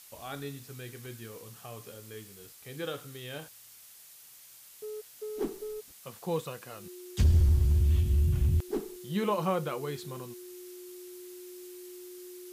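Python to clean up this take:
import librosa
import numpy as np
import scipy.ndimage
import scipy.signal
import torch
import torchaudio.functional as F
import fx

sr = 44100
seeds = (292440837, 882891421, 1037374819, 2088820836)

y = fx.notch(x, sr, hz=360.0, q=30.0)
y = fx.noise_reduce(y, sr, print_start_s=4.23, print_end_s=4.73, reduce_db=20.0)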